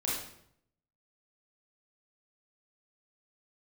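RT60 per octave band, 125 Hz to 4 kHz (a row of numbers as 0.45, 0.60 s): 0.95, 0.80, 0.75, 0.65, 0.60, 0.55 s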